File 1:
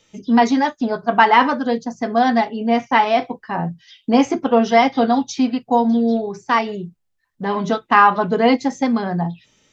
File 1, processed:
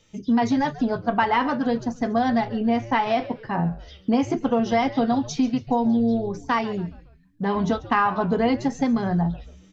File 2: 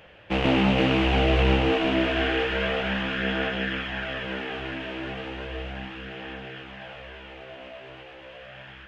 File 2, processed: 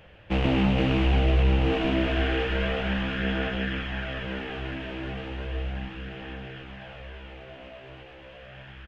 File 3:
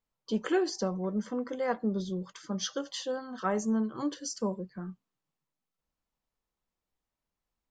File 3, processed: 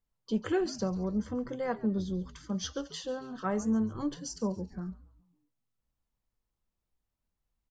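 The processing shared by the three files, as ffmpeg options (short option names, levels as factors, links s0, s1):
-filter_complex "[0:a]lowshelf=f=160:g=11.5,acompressor=threshold=0.178:ratio=3,asplit=5[s0][s1][s2][s3][s4];[s1]adelay=139,afreqshift=-120,volume=0.141[s5];[s2]adelay=278,afreqshift=-240,volume=0.0596[s6];[s3]adelay=417,afreqshift=-360,volume=0.0248[s7];[s4]adelay=556,afreqshift=-480,volume=0.0105[s8];[s0][s5][s6][s7][s8]amix=inputs=5:normalize=0,volume=0.668"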